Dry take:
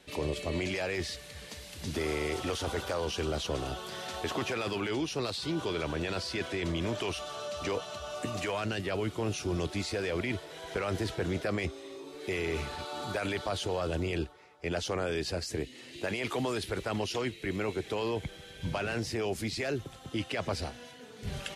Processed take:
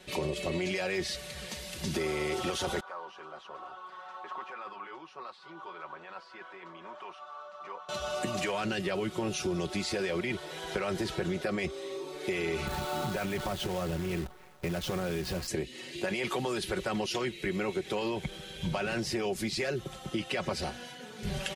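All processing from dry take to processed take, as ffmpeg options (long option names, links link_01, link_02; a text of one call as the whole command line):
ffmpeg -i in.wav -filter_complex "[0:a]asettb=1/sr,asplit=3[link_01][link_02][link_03];[link_01]atrim=end=2.804[link_04];[link_02]atrim=start=2.8:end=7.89,asetpts=PTS-STARTPTS,afade=type=in:duration=0.004:curve=qsin,afade=type=out:start_time=5.086:duration=0.004:curve=qsin,bandpass=frequency=1100:width_type=q:width=3.1,flanger=delay=3.6:depth=3.5:regen=-61:speed=1.2:shape=triangular[link_05];[link_03]atrim=start=7.886[link_06];[link_04][link_05]acrossfade=duration=0.004:curve1=hsin:curve2=qsin[link_07];[link_07][link_06]acrossfade=duration=0.004:curve1=qsin:curve2=hsin,asettb=1/sr,asplit=3[link_08][link_09][link_10];[link_08]atrim=end=12.674[link_11];[link_09]atrim=start=12.67:end=15.48,asetpts=PTS-STARTPTS,afade=type=in:duration=0.004:curve=qsin,afade=type=out:start_time=2.806:duration=0.004:curve=qsin,bass=frequency=250:gain=10,treble=frequency=4000:gain=-10,acompressor=threshold=-31dB:ratio=6:attack=3.2:release=140:knee=1:detection=peak,acrusher=bits=8:dc=4:mix=0:aa=0.000001[link_12];[link_10]atrim=start=15.476[link_13];[link_11][link_12]acrossfade=duration=0.004:curve1=hsin:curve2=qsin[link_14];[link_14][link_13]acrossfade=duration=0.004:curve1=qsin:curve2=hsin,aecho=1:1:5.4:0.62,acompressor=threshold=-32dB:ratio=6,volume=3.5dB" out.wav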